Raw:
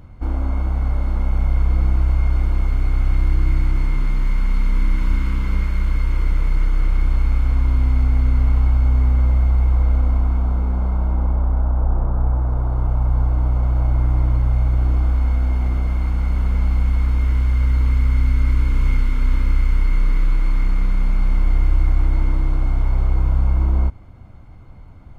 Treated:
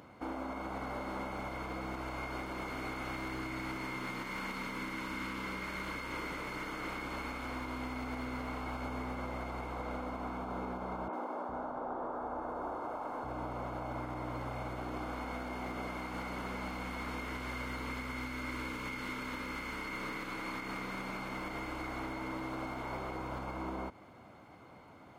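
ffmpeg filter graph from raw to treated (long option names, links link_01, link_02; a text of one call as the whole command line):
ffmpeg -i in.wav -filter_complex "[0:a]asettb=1/sr,asplit=3[link_01][link_02][link_03];[link_01]atrim=end=11.084[link_04];[link_02]atrim=start=11.08:end=13.24,asetpts=PTS-STARTPTS,afade=type=in:duration=0.004:curve=qsin,afade=type=out:start_time=2.156:duration=0.004:curve=qsin,bandreject=frequency=61.95:width_type=h:width=4,bandreject=frequency=123.9:width_type=h:width=4,bandreject=frequency=185.85:width_type=h:width=4,acrossover=split=210|3000[link_05][link_06][link_07];[link_07]adelay=50[link_08];[link_05]adelay=410[link_09];[link_09][link_06][link_08]amix=inputs=3:normalize=0,atrim=end_sample=95256[link_10];[link_03]atrim=start=13.236[link_11];[link_04][link_10]acrossfade=duration=0.004:curve1=hsin:curve2=qsin[link_12];[link_12][link_11]acrossfade=duration=0.004:curve1=qsin:curve2=hsin,highpass=320,alimiter=level_in=6.5dB:limit=-24dB:level=0:latency=1:release=142,volume=-6.5dB" out.wav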